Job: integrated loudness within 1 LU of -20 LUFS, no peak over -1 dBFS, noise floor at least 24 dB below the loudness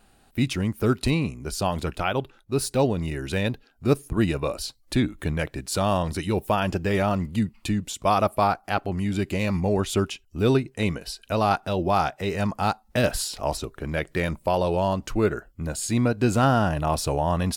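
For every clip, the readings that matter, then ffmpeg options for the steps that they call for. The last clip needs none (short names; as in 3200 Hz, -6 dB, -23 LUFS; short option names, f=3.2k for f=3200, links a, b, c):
loudness -25.5 LUFS; peak -8.0 dBFS; loudness target -20.0 LUFS
-> -af "volume=5.5dB"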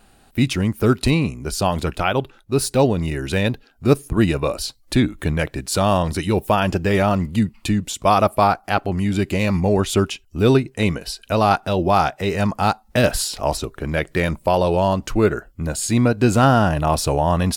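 loudness -20.0 LUFS; peak -2.5 dBFS; noise floor -54 dBFS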